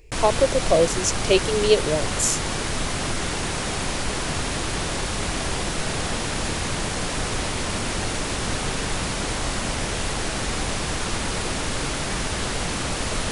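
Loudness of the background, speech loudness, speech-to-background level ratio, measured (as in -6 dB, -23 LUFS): -26.0 LUFS, -21.5 LUFS, 4.5 dB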